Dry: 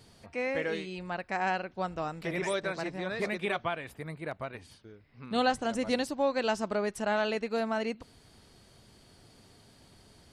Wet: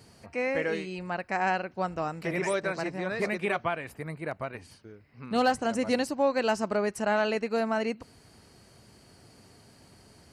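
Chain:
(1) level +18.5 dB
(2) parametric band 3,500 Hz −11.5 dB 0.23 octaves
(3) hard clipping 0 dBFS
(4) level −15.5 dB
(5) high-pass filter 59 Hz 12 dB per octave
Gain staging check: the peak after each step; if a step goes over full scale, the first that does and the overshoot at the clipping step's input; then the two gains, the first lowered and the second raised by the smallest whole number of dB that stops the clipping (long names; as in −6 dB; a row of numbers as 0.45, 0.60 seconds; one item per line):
+4.5, +4.5, 0.0, −15.5, −15.0 dBFS
step 1, 4.5 dB
step 1 +13.5 dB, step 4 −10.5 dB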